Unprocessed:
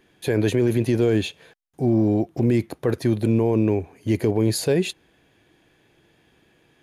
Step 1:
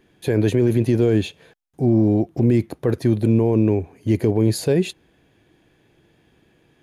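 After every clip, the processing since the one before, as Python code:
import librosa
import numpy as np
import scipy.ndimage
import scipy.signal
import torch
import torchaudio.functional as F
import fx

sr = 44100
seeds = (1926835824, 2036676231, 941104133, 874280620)

y = fx.low_shelf(x, sr, hz=500.0, db=6.0)
y = y * 10.0 ** (-2.0 / 20.0)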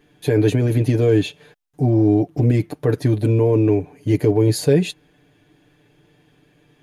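y = x + 0.78 * np.pad(x, (int(6.8 * sr / 1000.0), 0))[:len(x)]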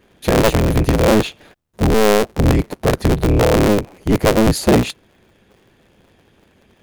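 y = fx.cycle_switch(x, sr, every=3, mode='inverted')
y = y * 10.0 ** (2.5 / 20.0)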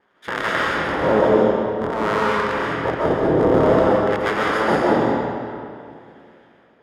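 y = fx.lower_of_two(x, sr, delay_ms=0.59)
y = fx.filter_lfo_bandpass(y, sr, shape='sine', hz=0.54, low_hz=470.0, high_hz=1700.0, q=1.3)
y = fx.rev_freeverb(y, sr, rt60_s=2.5, hf_ratio=0.75, predelay_ms=95, drr_db=-6.0)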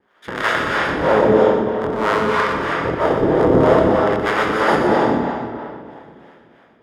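y = fx.harmonic_tremolo(x, sr, hz=3.1, depth_pct=70, crossover_hz=440.0)
y = y + 10.0 ** (-7.5 / 20.0) * np.pad(y, (int(122 * sr / 1000.0), 0))[:len(y)]
y = y * 10.0 ** (5.0 / 20.0)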